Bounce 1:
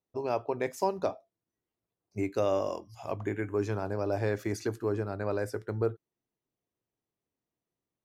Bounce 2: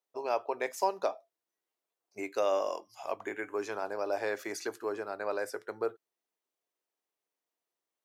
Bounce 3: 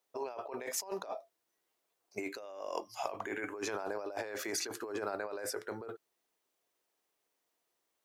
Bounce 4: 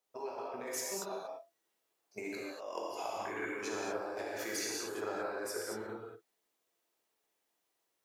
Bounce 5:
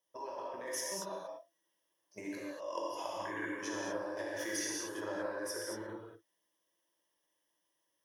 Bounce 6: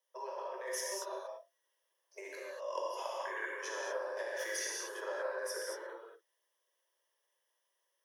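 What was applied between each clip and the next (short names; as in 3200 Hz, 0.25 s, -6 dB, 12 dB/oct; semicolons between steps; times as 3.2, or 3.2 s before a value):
HPF 550 Hz 12 dB/oct; gain +2 dB
negative-ratio compressor -41 dBFS, ratio -1; gain +1 dB
non-linear reverb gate 0.26 s flat, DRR -4 dB; gain -5 dB
ripple EQ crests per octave 1.2, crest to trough 12 dB; gain -2 dB
rippled Chebyshev high-pass 370 Hz, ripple 3 dB; gain +2 dB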